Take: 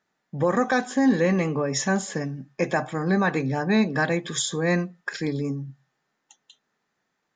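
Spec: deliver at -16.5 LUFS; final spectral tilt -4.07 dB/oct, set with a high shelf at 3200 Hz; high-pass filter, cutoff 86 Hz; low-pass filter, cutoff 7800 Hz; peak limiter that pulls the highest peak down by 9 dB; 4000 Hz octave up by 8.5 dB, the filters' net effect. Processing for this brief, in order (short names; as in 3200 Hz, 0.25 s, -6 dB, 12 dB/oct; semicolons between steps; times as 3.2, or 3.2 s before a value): HPF 86 Hz; LPF 7800 Hz; high shelf 3200 Hz +9 dB; bell 4000 Hz +4 dB; gain +9.5 dB; limiter -6 dBFS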